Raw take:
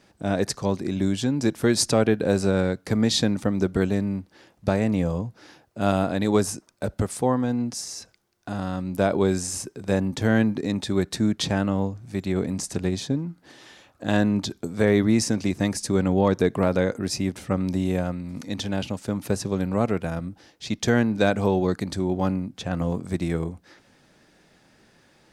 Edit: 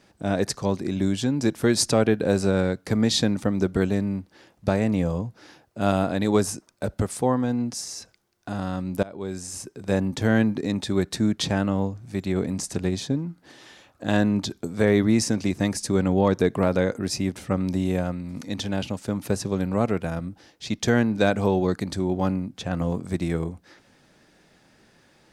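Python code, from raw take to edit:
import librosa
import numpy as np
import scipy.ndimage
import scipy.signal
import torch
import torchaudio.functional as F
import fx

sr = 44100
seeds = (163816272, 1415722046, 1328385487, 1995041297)

y = fx.edit(x, sr, fx.fade_in_from(start_s=9.03, length_s=0.94, floor_db=-23.5), tone=tone)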